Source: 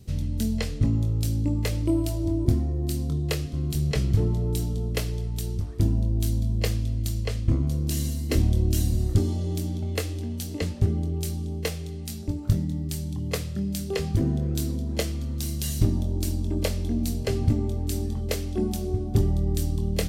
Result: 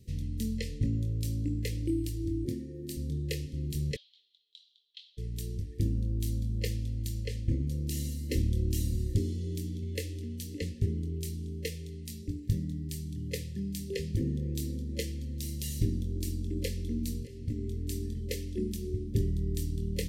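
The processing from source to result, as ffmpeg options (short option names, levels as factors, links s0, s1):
-filter_complex "[0:a]asettb=1/sr,asplit=3[s0][s1][s2];[s0]atrim=end=2.474[s3];[s1]atrim=start=2.47:end=2.97,asetpts=PTS-STARTPTS,afade=t=in:d=0.004:c=qsin,afade=t=out:st=0.496:d=0.004:c=qsin,highpass=180[s4];[s2]atrim=start=2.966[s5];[s3][s4]acrossfade=d=0.004:c1=hsin:c2=qsin[s6];[s6][s5]acrossfade=d=0.004:c1=qsin:c2=hsin,asplit=3[s7][s8][s9];[s7]afade=t=out:st=3.95:d=0.02[s10];[s8]asuperpass=centerf=3600:order=4:qfactor=3.7,afade=t=in:st=3.95:d=0.02,afade=t=out:st=5.17:d=0.02[s11];[s9]afade=t=in:st=5.17:d=0.02[s12];[s10][s11][s12]amix=inputs=3:normalize=0,asplit=2[s13][s14];[s13]atrim=end=17.27,asetpts=PTS-STARTPTS,afade=t=out:st=17.266:d=0.004:c=hsin:silence=0.1[s15];[s14]atrim=start=17.27,asetpts=PTS-STARTPTS,afade=t=in:d=0.47:silence=0.1[s16];[s15][s16]concat=n=2:v=0:a=1,afftfilt=real='re*(1-between(b*sr/4096,570,1700))':imag='im*(1-between(b*sr/4096,570,1700))':win_size=4096:overlap=0.75,volume=0.447"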